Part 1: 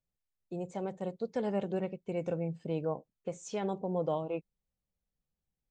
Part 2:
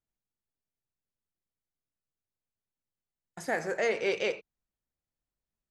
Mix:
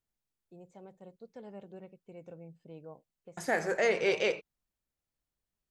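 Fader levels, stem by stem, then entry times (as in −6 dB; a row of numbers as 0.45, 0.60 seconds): −14.5, +1.0 decibels; 0.00, 0.00 seconds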